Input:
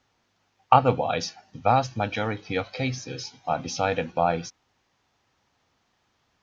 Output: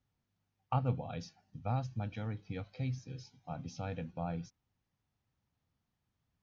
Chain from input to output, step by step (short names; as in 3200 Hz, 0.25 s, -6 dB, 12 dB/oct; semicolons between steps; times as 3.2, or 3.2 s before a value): EQ curve 160 Hz 0 dB, 360 Hz -12 dB, 930 Hz -15 dB; gain -5 dB